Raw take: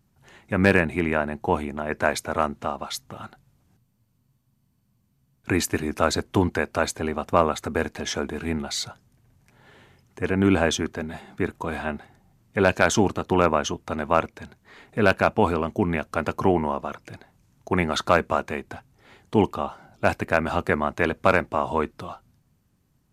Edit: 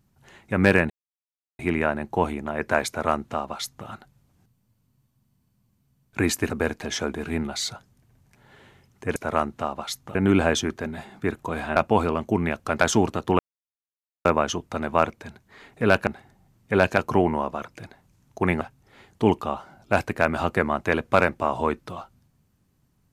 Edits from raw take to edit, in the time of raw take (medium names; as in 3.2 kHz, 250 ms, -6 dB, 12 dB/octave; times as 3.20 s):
0.90 s: insert silence 0.69 s
2.19–3.18 s: copy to 10.31 s
5.81–7.65 s: delete
11.92–12.83 s: swap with 15.23–16.28 s
13.41 s: insert silence 0.86 s
17.91–18.73 s: delete